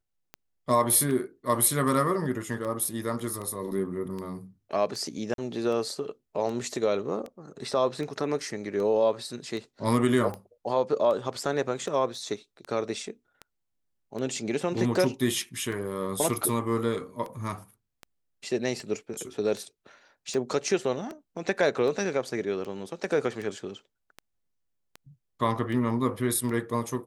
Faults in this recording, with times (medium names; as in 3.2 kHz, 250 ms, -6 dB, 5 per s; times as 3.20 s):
tick 78 rpm -24 dBFS
5.34–5.38 s: dropout 42 ms
12.15 s: dropout 2.2 ms